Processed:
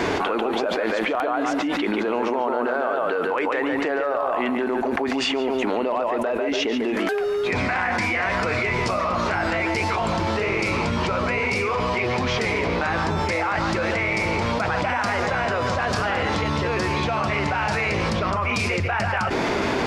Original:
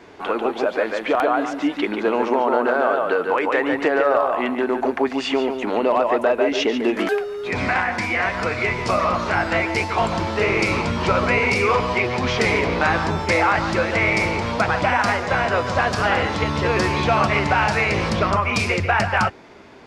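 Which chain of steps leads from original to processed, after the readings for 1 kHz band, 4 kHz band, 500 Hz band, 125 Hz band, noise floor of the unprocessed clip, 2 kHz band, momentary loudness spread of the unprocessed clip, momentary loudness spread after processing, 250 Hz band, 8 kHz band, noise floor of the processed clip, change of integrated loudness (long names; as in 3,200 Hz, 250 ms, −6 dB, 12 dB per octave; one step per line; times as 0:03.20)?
−3.0 dB, −1.0 dB, −3.0 dB, −2.0 dB, −33 dBFS, −3.0 dB, 4 LU, 1 LU, −1.5 dB, −1.5 dB, −24 dBFS, −3.0 dB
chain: envelope flattener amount 100%
level −8 dB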